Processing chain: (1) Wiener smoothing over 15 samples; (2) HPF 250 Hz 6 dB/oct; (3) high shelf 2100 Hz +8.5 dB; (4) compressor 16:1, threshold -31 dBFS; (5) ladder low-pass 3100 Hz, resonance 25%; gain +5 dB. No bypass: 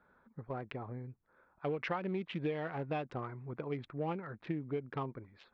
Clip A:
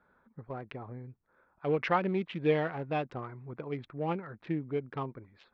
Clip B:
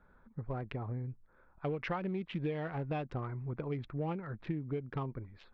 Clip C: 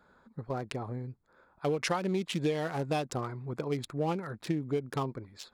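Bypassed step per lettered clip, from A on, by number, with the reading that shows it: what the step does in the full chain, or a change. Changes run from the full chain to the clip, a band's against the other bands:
4, mean gain reduction 2.5 dB; 2, crest factor change -2.5 dB; 5, 4 kHz band +5.5 dB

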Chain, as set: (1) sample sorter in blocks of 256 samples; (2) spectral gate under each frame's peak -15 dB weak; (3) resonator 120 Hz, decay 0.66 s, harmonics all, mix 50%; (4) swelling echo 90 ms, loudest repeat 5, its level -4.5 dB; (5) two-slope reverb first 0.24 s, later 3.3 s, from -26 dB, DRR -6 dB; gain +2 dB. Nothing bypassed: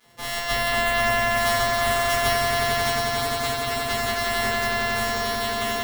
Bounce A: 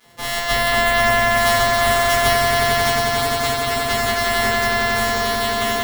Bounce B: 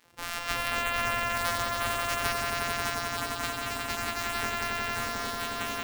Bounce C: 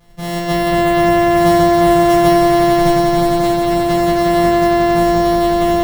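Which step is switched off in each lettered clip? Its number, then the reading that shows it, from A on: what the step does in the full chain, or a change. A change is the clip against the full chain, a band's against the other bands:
3, loudness change +5.5 LU; 5, echo-to-direct 13.0 dB to 5.0 dB; 2, 250 Hz band +17.0 dB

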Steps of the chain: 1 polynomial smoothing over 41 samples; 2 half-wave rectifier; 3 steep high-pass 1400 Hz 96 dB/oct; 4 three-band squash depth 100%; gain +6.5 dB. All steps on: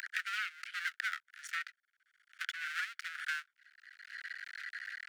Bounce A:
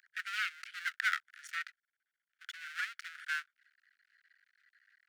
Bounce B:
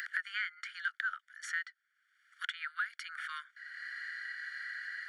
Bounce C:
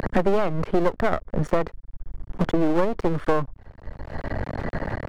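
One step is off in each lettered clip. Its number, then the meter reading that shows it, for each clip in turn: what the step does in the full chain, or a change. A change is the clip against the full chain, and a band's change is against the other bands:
4, crest factor change +4.0 dB; 2, 8 kHz band -3.0 dB; 3, crest factor change -4.0 dB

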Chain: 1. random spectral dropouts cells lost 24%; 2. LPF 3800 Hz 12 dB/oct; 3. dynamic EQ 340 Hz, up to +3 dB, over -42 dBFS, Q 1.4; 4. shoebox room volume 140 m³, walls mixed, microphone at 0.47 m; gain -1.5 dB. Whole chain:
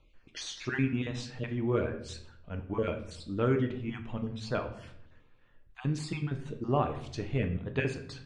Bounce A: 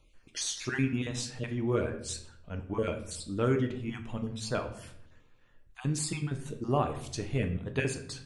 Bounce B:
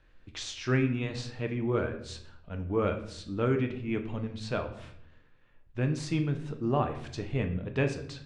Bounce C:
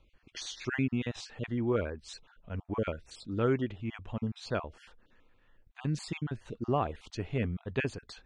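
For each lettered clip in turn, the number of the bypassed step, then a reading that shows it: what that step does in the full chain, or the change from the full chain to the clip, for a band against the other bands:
2, momentary loudness spread change -3 LU; 1, loudness change +2.0 LU; 4, echo-to-direct -5.5 dB to none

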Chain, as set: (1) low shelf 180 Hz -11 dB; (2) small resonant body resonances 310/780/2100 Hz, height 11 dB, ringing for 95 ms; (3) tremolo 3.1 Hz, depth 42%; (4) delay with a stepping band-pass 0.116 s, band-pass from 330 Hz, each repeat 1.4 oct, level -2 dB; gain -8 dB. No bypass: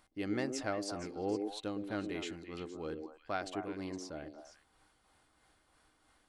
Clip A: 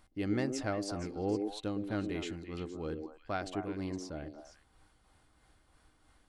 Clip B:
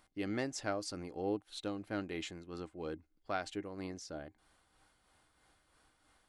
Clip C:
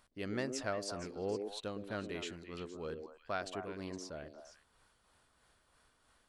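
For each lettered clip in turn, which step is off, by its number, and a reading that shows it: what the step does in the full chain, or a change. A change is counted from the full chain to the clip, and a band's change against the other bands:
1, 125 Hz band +7.0 dB; 4, echo-to-direct -7.0 dB to none; 2, 250 Hz band -4.5 dB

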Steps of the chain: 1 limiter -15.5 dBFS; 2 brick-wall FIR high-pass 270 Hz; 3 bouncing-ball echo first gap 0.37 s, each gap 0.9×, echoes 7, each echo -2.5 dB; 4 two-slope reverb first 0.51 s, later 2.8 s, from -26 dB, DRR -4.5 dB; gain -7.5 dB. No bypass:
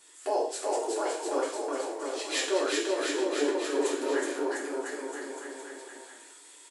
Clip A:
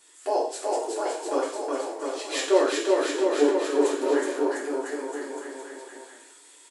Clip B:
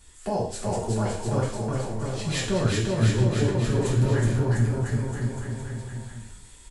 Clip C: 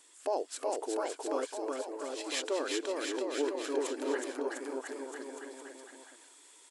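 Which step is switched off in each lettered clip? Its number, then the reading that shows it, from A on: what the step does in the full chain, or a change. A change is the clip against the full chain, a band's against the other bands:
1, crest factor change +3.0 dB; 2, 250 Hz band +6.5 dB; 4, echo-to-direct 9.0 dB to 1.0 dB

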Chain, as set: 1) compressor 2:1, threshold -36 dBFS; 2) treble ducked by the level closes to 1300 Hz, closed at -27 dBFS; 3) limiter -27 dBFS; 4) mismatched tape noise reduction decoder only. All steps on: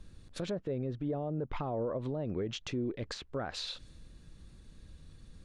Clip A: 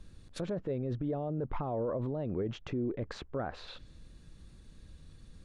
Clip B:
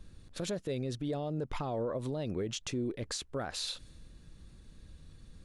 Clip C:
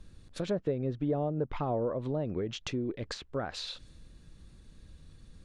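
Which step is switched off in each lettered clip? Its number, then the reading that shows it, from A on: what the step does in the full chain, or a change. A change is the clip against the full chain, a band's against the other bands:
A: 1, mean gain reduction 5.5 dB; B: 2, 8 kHz band +9.0 dB; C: 3, crest factor change +4.5 dB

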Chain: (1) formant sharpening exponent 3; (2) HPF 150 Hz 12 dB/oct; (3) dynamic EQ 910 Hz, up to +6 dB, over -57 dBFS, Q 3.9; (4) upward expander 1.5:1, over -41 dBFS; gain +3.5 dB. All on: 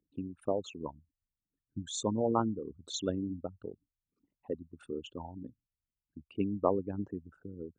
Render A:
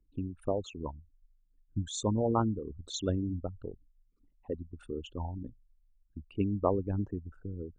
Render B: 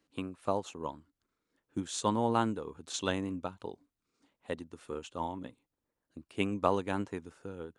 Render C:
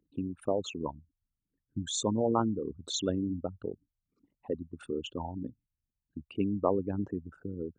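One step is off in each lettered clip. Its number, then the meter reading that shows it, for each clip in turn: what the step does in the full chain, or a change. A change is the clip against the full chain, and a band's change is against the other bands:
2, 125 Hz band +7.0 dB; 1, 2 kHz band +13.0 dB; 4, 1 kHz band -2.5 dB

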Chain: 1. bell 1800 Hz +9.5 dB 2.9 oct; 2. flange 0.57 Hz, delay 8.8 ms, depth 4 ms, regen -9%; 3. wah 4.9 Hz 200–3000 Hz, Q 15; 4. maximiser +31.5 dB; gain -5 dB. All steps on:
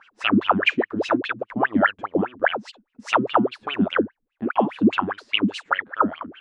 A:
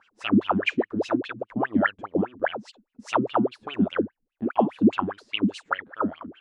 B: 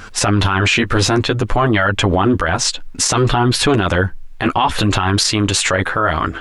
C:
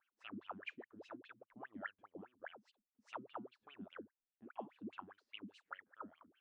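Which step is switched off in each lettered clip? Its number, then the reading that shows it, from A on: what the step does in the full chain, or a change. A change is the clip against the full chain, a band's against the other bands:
1, 125 Hz band +4.5 dB; 3, 125 Hz band +11.5 dB; 4, crest factor change +6.0 dB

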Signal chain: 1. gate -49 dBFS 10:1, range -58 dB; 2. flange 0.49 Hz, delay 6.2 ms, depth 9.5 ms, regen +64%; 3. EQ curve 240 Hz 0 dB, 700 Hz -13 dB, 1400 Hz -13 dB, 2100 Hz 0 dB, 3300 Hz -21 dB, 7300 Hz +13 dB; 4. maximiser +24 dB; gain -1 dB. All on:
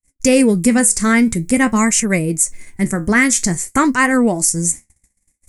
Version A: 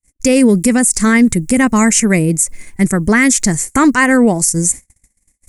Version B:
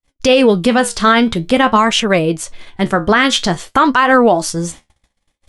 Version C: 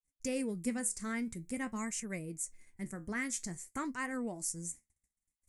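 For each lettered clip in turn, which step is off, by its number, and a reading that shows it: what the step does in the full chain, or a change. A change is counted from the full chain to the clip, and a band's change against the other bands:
2, 125 Hz band +2.5 dB; 3, crest factor change -2.0 dB; 4, crest factor change +5.0 dB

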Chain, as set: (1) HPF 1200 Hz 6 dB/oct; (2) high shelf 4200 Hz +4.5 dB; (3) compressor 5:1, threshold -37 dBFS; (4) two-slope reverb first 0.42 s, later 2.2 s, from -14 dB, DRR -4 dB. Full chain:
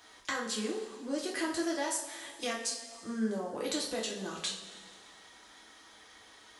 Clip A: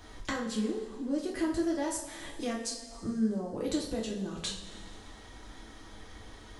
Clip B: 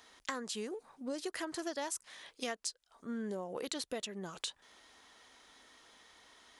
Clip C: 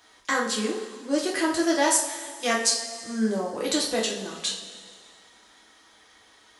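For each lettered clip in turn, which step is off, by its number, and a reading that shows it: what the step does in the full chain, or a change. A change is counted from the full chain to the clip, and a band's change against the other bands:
1, 125 Hz band +9.5 dB; 4, crest factor change +5.0 dB; 3, mean gain reduction 6.5 dB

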